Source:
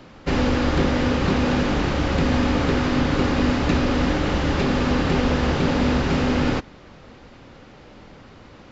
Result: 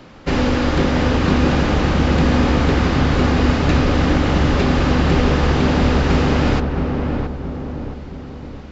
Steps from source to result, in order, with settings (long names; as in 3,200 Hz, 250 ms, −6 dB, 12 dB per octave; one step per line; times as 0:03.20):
feedback echo with a low-pass in the loop 671 ms, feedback 50%, low-pass 1,100 Hz, level −3.5 dB
level +3 dB